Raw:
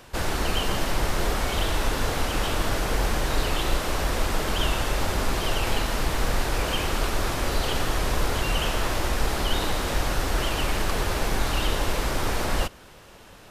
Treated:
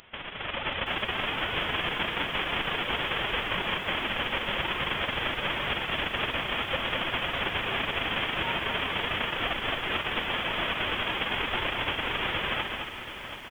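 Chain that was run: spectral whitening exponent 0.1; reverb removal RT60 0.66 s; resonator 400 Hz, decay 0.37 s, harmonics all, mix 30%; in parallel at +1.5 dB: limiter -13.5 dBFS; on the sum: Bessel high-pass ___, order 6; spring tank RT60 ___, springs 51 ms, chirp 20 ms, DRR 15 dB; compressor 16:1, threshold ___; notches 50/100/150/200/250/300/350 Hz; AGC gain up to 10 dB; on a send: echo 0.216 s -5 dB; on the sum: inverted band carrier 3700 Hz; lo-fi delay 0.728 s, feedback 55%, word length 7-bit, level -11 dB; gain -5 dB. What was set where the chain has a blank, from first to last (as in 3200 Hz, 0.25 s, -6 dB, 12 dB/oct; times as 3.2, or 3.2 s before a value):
170 Hz, 1.2 s, -26 dBFS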